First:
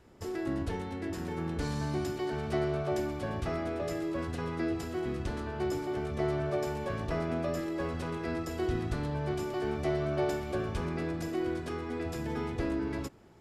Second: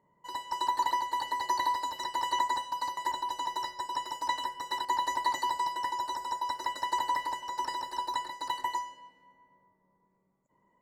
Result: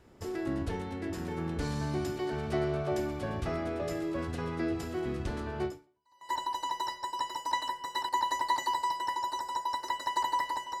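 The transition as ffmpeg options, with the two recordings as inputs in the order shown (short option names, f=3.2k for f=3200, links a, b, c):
-filter_complex "[0:a]apad=whole_dur=10.8,atrim=end=10.8,atrim=end=6.33,asetpts=PTS-STARTPTS[a];[1:a]atrim=start=2.41:end=7.56,asetpts=PTS-STARTPTS[b];[a][b]acrossfade=d=0.68:c1=exp:c2=exp"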